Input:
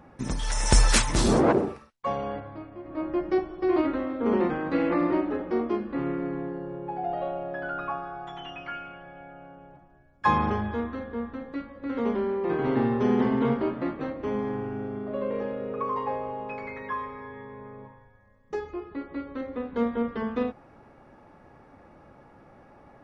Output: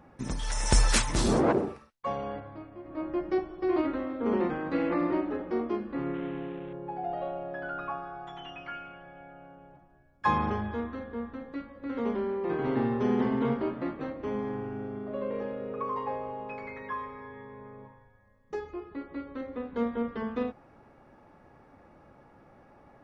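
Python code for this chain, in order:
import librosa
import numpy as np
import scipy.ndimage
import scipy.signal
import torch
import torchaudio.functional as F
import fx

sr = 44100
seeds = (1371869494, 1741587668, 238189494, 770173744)

y = fx.cvsd(x, sr, bps=16000, at=(6.14, 6.73))
y = y * librosa.db_to_amplitude(-3.5)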